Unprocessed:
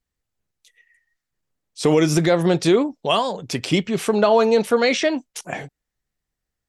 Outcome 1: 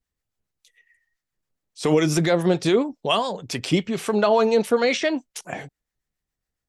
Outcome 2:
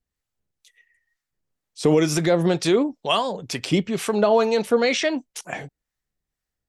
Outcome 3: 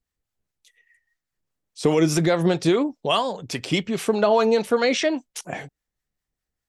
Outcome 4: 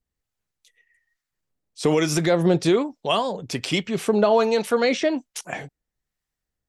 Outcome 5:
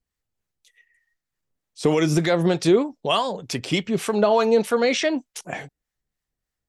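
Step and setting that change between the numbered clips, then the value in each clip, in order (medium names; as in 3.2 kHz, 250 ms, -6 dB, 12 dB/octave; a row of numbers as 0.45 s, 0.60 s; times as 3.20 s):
harmonic tremolo, rate: 7.2 Hz, 2.1 Hz, 4.9 Hz, 1.2 Hz, 3.3 Hz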